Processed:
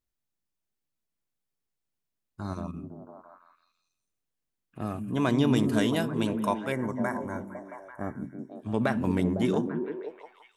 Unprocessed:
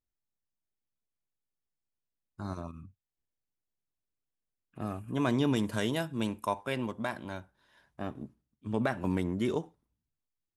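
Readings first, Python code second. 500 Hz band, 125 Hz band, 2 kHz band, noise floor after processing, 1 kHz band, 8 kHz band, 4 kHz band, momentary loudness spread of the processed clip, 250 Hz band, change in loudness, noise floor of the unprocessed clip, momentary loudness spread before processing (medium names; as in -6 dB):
+4.5 dB, +4.5 dB, +3.0 dB, -84 dBFS, +3.5 dB, +3.0 dB, +2.5 dB, 17 LU, +5.5 dB, +4.5 dB, under -85 dBFS, 16 LU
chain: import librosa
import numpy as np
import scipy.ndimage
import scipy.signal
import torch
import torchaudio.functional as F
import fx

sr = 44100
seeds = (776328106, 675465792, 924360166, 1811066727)

y = fx.echo_stepped(x, sr, ms=168, hz=190.0, octaves=0.7, feedback_pct=70, wet_db=-1)
y = fx.spec_box(y, sr, start_s=6.72, length_s=1.8, low_hz=2300.0, high_hz=5400.0, gain_db=-23)
y = y * librosa.db_to_amplitude(3.0)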